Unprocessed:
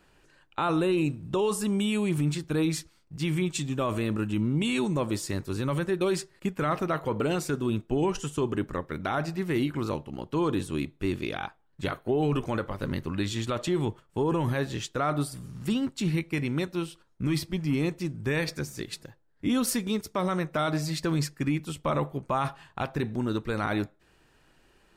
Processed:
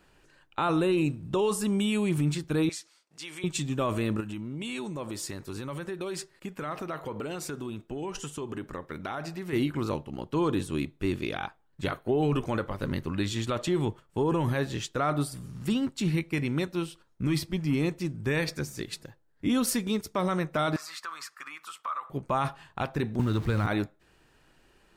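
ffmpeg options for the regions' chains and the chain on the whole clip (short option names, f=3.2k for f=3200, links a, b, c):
-filter_complex "[0:a]asettb=1/sr,asplit=3[a][b][c];[a]atrim=end=2.694[d];[b]atrim=start=2.69:end=3.44,asetpts=PTS-STARTPTS,afade=t=in:d=0.004:c=qsin,afade=t=out:st=0.746:d=0.004:c=qsin,highpass=560,lowpass=7.8k,highshelf=f=5.3k:g=10.5,acompressor=threshold=-41dB:ratio=2:attack=3.2:release=140:knee=1:detection=peak[e];[c]atrim=start=3.436[f];[d][e]acrossfade=d=0.004:c1=hsin:c2=qsin[g];[g][f]acrossfade=d=0.004:c1=qsin:c2=hsin,asettb=1/sr,asplit=3[h][i][j];[h]atrim=end=4.204[k];[i]atrim=start=4.2:end=9.53,asetpts=PTS-STARTPTS,afade=t=in:d=0.004:c=qsin,afade=t=out:st=5.326:d=0.004:c=qsin,acompressor=threshold=-29dB:ratio=5:attack=3.2:release=140:knee=1:detection=peak,lowshelf=f=260:g=-5.5[l];[j]atrim=start=9.526[m];[k][l]acrossfade=d=0.004:c1=hsin:c2=qsin[n];[n][m]acrossfade=d=0.004:c1=qsin:c2=hsin,asettb=1/sr,asplit=3[o][p][q];[o]atrim=end=20.764[r];[p]atrim=start=20.76:end=22.1,asetpts=PTS-STARTPTS,afade=t=in:d=0.004:c=qsin,afade=t=out:st=1.336:d=0.004:c=qsin,highpass=f=1.2k:t=q:w=7,acompressor=threshold=-42dB:ratio=2:attack=3.2:release=140:knee=1:detection=peak[s];[q]atrim=start=22.096[t];[r][s]acrossfade=d=0.004:c1=hsin:c2=qsin[u];[u][t]acrossfade=d=0.004:c1=qsin:c2=hsin,asettb=1/sr,asplit=3[v][w][x];[v]atrim=end=23.194[y];[w]atrim=start=23.19:end=23.67,asetpts=PTS-STARTPTS,afade=t=in:d=0.004:c=qsin,afade=t=out:st=0.476:d=0.004:c=qsin,aeval=exprs='val(0)+0.5*0.0126*sgn(val(0))':c=same,acrossover=split=660|5300[z][aa][ab];[z]acompressor=threshold=-32dB:ratio=4[ac];[aa]acompressor=threshold=-33dB:ratio=4[ad];[ab]acompressor=threshold=-55dB:ratio=4[ae];[ac][ad][ae]amix=inputs=3:normalize=0,equalizer=f=89:t=o:w=2.3:g=14[af];[x]atrim=start=23.666[ag];[y][af]acrossfade=d=0.004:c1=hsin:c2=qsin[ah];[ah][ag]acrossfade=d=0.004:c1=qsin:c2=hsin"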